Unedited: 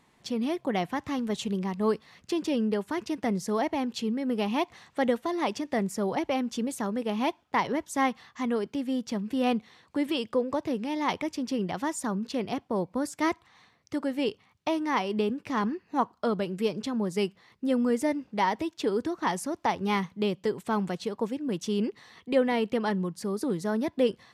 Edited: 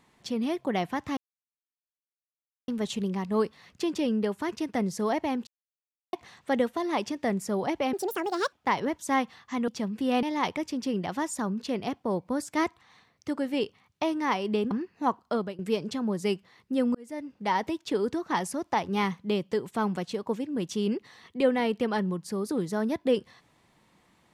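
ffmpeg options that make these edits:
-filter_complex "[0:a]asplit=11[a][b][c][d][e][f][g][h][i][j][k];[a]atrim=end=1.17,asetpts=PTS-STARTPTS,afade=t=out:st=1.166:d=0.004:c=hsin,apad=pad_dur=1.51[l];[b]atrim=start=1.17:end=3.96,asetpts=PTS-STARTPTS,afade=t=in:d=0.004:c=hsin,afade=t=out:st=2.786:d=0.004:c=hsin[m];[c]atrim=start=3.96:end=4.62,asetpts=PTS-STARTPTS,volume=0[n];[d]atrim=start=4.62:end=6.424,asetpts=PTS-STARTPTS,afade=t=in:d=0.004:c=hsin[o];[e]atrim=start=6.42:end=7.4,asetpts=PTS-STARTPTS,asetrate=72324,aresample=44100,atrim=end_sample=26352,asetpts=PTS-STARTPTS[p];[f]atrim=start=7.396:end=8.552[q];[g]atrim=start=8.998:end=9.552[r];[h]atrim=start=10.878:end=15.362[s];[i]atrim=start=15.628:end=16.51,asetpts=PTS-STARTPTS,afade=t=out:st=0.552:d=0.33:c=qsin:silence=0.112202[t];[j]atrim=start=16.51:end=17.87,asetpts=PTS-STARTPTS,afade=t=in:d=0.004:c=hsin:silence=0.112202,afade=t=out:st=1.356:d=0.004:c=hsin[u];[k]atrim=start=17.87,asetpts=PTS-STARTPTS,afade=t=in:d=0.64[v];[l][m][n][o]concat=n=4:v=0:a=1[w];[w][p]acrossfade=d=0.004:c1=hsin:c2=hsin[x];[x][q]acrossfade=d=0.004:c1=hsin:c2=hsin[y];[y][r]acrossfade=d=0.004:c1=hsin:c2=hsin[z];[z][s]acrossfade=d=0.004:c1=hsin:c2=hsin[aa];[t][u][v]concat=n=3:v=0:a=1[ab];[aa][ab]acrossfade=d=0.004:c1=hsin:c2=hsin"

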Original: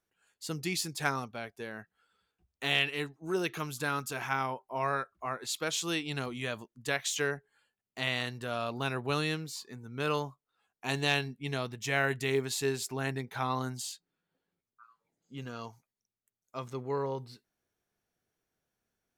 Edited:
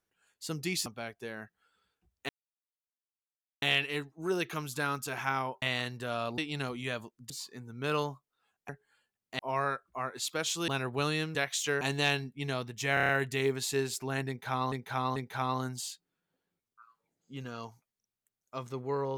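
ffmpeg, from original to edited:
-filter_complex "[0:a]asplit=18[a][b][c][d][e][f][g][h][i][j][k][l][m][n][o][p][q][r];[a]atrim=end=0.862[s];[b]atrim=start=1.228:end=2.66,asetpts=PTS-STARTPTS,afade=t=out:st=1.428:d=0.004:c=hsin,apad=pad_dur=1.33[t];[c]atrim=start=2.66:end=4.662,asetpts=PTS-STARTPTS,afade=t=in:d=0.004:c=hsin[u];[d]atrim=start=8.028:end=8.792[v];[e]atrim=start=5.948:end=6.872[w];[f]atrim=start=9.458:end=10.852[x];[g]atrim=start=7.328:end=8.032[y];[h]atrim=start=4.658:end=5.952[z];[i]atrim=start=8.788:end=9.462[aa];[j]atrim=start=6.868:end=7.332[ab];[k]atrim=start=10.848:end=12.012[ac];[l]atrim=start=11.978:end=12.012[ad];[m]atrim=start=11.978:end=12.012[ae];[n]atrim=start=11.978:end=12.012[af];[o]atrim=start=11.978:end=12.012[ag];[p]atrim=start=11.978:end=13.612[ah];[q]atrim=start=13.168:end=13.612[ai];[r]atrim=start=13.168[aj];[t][u]concat=n=2:v=0:a=1[ak];[s][ak]acrossfade=d=0.004:c1=hsin:c2=hsin[al];[al][v]acrossfade=d=0.004:c1=hsin:c2=hsin[am];[am][w]acrossfade=d=0.004:c1=hsin:c2=hsin[an];[an][x]acrossfade=d=0.004:c1=hsin:c2=hsin[ao];[ao][y]acrossfade=d=0.004:c1=hsin:c2=hsin[ap];[ap][z]acrossfade=d=0.004:c1=hsin:c2=hsin[aq];[aq][aa]acrossfade=d=0.004:c1=hsin:c2=hsin[ar];[ar][ab]acrossfade=d=0.004:c1=hsin:c2=hsin[as];[as][ac]acrossfade=d=0.004:c1=hsin:c2=hsin[at];[at][ad]acrossfade=d=0.004:c1=hsin:c2=hsin[au];[au][ae]acrossfade=d=0.004:c1=hsin:c2=hsin[av];[av][af]acrossfade=d=0.004:c1=hsin:c2=hsin[aw];[aw][ag]acrossfade=d=0.004:c1=hsin:c2=hsin[ax];[ax][ah]acrossfade=d=0.004:c1=hsin:c2=hsin[ay];[ay][ai]acrossfade=d=0.004:c1=hsin:c2=hsin[az];[az][aj]acrossfade=d=0.004:c1=hsin:c2=hsin"

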